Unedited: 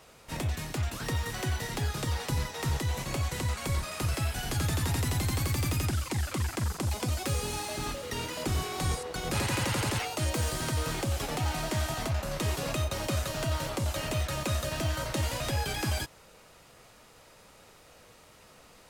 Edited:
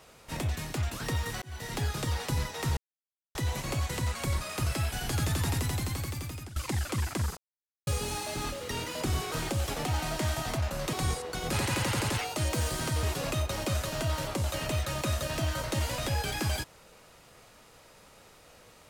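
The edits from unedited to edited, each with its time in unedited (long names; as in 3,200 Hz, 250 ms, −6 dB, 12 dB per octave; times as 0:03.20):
0:01.42–0:01.76: fade in
0:02.77: splice in silence 0.58 s
0:04.91–0:05.98: fade out, to −17 dB
0:06.79–0:07.29: silence
0:10.84–0:12.45: move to 0:08.74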